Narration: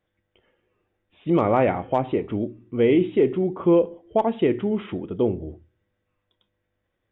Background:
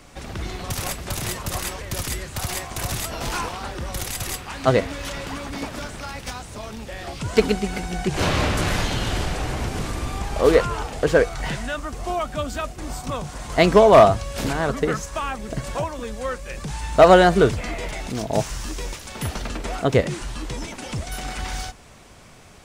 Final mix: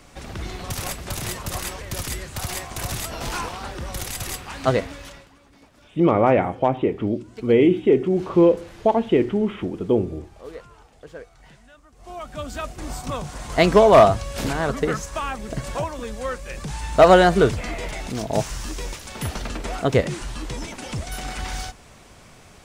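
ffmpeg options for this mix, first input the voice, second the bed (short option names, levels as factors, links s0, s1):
-filter_complex "[0:a]adelay=4700,volume=1.33[s0];[1:a]volume=10.6,afade=t=out:st=4.67:d=0.62:silence=0.0891251,afade=t=in:st=11.94:d=0.85:silence=0.0794328[s1];[s0][s1]amix=inputs=2:normalize=0"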